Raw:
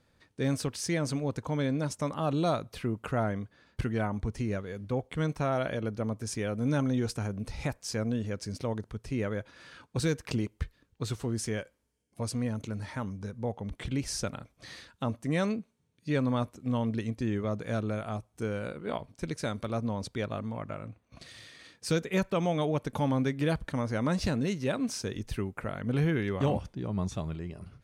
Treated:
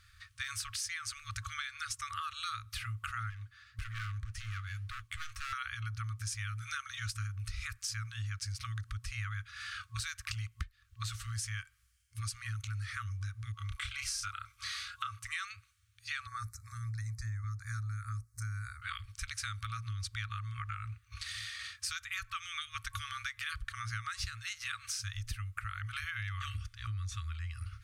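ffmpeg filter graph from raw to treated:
-filter_complex "[0:a]asettb=1/sr,asplit=3[a][b][c];[a]atrim=end=3.304[d];[b]atrim=start=3.3:end=5.53,asetpts=PTS-STARTPTS,afade=t=in:d=0.004:c=qsin,afade=t=out:st=2.226:d=0.004:c=qsin,volume=32dB,asoftclip=hard,volume=-32dB,flanger=delay=4.5:depth=5.2:regen=70:speed=1.8:shape=sinusoidal[e];[c]atrim=start=5.526[f];[d][e]acrossfade=d=0.004:c1=hsin:c2=qsin[g];[g][f]acrossfade=d=0.004:c1=qsin:c2=hsin,asettb=1/sr,asplit=3[h][i][j];[h]atrim=end=13.574[k];[i]atrim=start=13.57:end=15.25,asetpts=PTS-STARTPTS,afade=t=in:d=0.004:c=qsin,afade=t=out:st=1.676:d=0.004:c=qsin,lowshelf=f=770:t=q:w=3:g=-8,bandreject=f=1.8k:w=8.4,asplit=2[l][m];[m]adelay=30,volume=-3dB[n];[l][n]amix=inputs=2:normalize=0,atrim=end_sample=74088[o];[j]atrim=start=15.246[p];[k][o]acrossfade=d=0.004:c1=hsin:c2=qsin[q];[q][p]acrossfade=d=0.004:c1=qsin:c2=hsin,asettb=1/sr,asplit=3[r][s][t];[r]atrim=end=16.274[u];[s]atrim=start=16.27:end=18.82,asetpts=PTS-STARTPTS,afade=t=in:d=0.004:c=qsin,afade=t=out:st=2.546:d=0.004:c=qsin,asuperstop=centerf=3000:order=4:qfactor=1.1,equalizer=f=730:t=o:w=2.8:g=-9[v];[t]atrim=start=18.816[w];[u][v]acrossfade=d=0.004:c1=hsin:c2=qsin[x];[x][w]acrossfade=d=0.004:c1=qsin:c2=hsin,afftfilt=real='re*(1-between(b*sr/4096,110,1100))':imag='im*(1-between(b*sr/4096,110,1100))':win_size=4096:overlap=0.75,acompressor=threshold=-46dB:ratio=6,volume=9.5dB"

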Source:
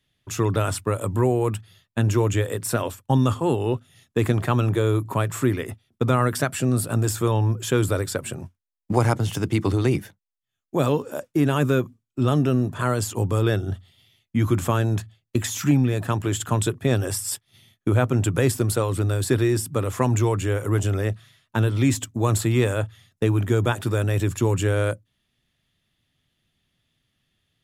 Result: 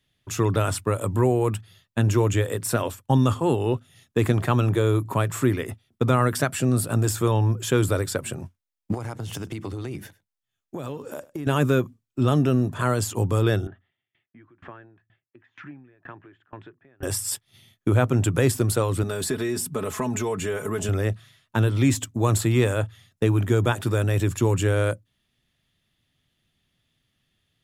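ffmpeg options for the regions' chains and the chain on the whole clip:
-filter_complex "[0:a]asettb=1/sr,asplit=3[a][b][c];[a]atrim=end=8.944[d];[b]atrim=start=8.94:end=11.47,asetpts=PTS-STARTPTS,afade=t=in:d=0.004:c=qsin,afade=t=out:st=2.526:d=0.004:c=qsin,acompressor=threshold=-29dB:ratio=6:attack=3.2:release=140:knee=1:detection=peak,aecho=1:1:101:0.0841,atrim=end_sample=111573[e];[c]atrim=start=11.466[f];[d][e]acrossfade=d=0.004:c1=hsin:c2=qsin[g];[g][f]acrossfade=d=0.004:c1=qsin:c2=hsin,asettb=1/sr,asplit=3[h][i][j];[h]atrim=end=13.674[k];[i]atrim=start=13.67:end=17.03,asetpts=PTS-STARTPTS,afade=t=in:d=0.004:c=qsin,afade=t=out:st=3.356:d=0.004:c=qsin,highpass=180,equalizer=f=210:t=q:w=4:g=-7,equalizer=f=340:t=q:w=4:g=3,equalizer=f=490:t=q:w=4:g=-5,equalizer=f=1.7k:t=q:w=4:g=8,lowpass=f=2.5k:w=0.5412,lowpass=f=2.5k:w=1.3066,acompressor=threshold=-42dB:ratio=2:attack=3.2:release=140:knee=1:detection=peak,aeval=exprs='val(0)*pow(10,-27*if(lt(mod(2.1*n/s,1),2*abs(2.1)/1000),1-mod(2.1*n/s,1)/(2*abs(2.1)/1000),(mod(2.1*n/s,1)-2*abs(2.1)/1000)/(1-2*abs(2.1)/1000))/20)':c=same[l];[j]atrim=start=17.026[m];[k][l]acrossfade=d=0.004:c1=hsin:c2=qsin[n];[n][m]acrossfade=d=0.004:c1=qsin:c2=hsin,asettb=1/sr,asplit=3[o][p][q];[o]atrim=end=19.034[r];[p]atrim=start=19.03:end=20.89,asetpts=PTS-STARTPTS,afade=t=in:d=0.004:c=qsin,afade=t=out:st=1.856:d=0.004:c=qsin,aecho=1:1:4.7:0.71,atrim=end_sample=82026,acompressor=threshold=-23dB:ratio=3:attack=3.2:release=140:knee=1:detection=peak[s];[q]atrim=start=20.886[t];[r][s]acrossfade=d=0.004:c1=hsin:c2=qsin[u];[u][t]acrossfade=d=0.004:c1=qsin:c2=hsin"

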